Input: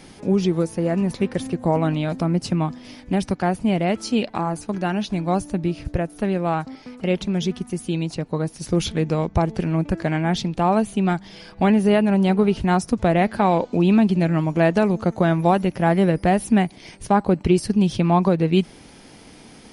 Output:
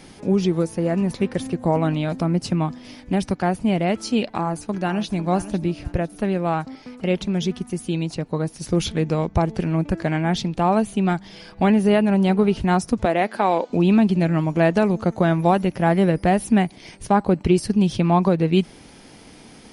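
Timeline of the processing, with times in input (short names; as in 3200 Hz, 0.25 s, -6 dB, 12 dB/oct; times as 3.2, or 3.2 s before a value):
4.36–5.15 echo throw 0.5 s, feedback 30%, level -13 dB
13.05–13.7 HPF 310 Hz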